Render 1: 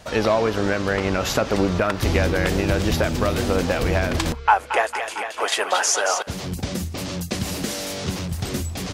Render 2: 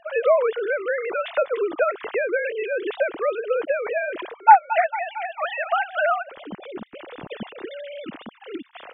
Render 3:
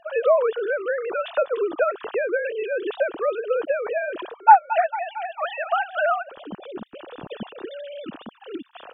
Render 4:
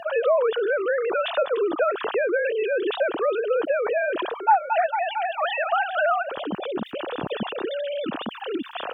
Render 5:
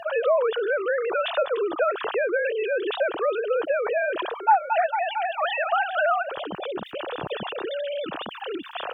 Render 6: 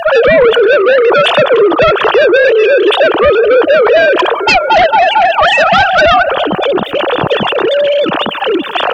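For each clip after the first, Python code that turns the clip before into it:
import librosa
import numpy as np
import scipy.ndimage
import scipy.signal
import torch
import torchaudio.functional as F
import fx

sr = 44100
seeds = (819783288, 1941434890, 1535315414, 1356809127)

y1 = fx.sine_speech(x, sr)
y1 = y1 * librosa.db_to_amplitude(-1.5)
y2 = fx.peak_eq(y1, sr, hz=2100.0, db=-15.0, octaves=0.24)
y3 = scipy.signal.sosfilt(scipy.signal.butter(2, 74.0, 'highpass', fs=sr, output='sos'), y2)
y3 = fx.env_flatten(y3, sr, amount_pct=50)
y3 = y3 * librosa.db_to_amplitude(-7.0)
y4 = fx.peak_eq(y3, sr, hz=240.0, db=-11.0, octaves=0.77)
y5 = fx.fold_sine(y4, sr, drive_db=11, ceiling_db=-8.5)
y5 = fx.echo_bbd(y5, sr, ms=206, stages=2048, feedback_pct=65, wet_db=-18.0)
y5 = y5 * librosa.db_to_amplitude(5.0)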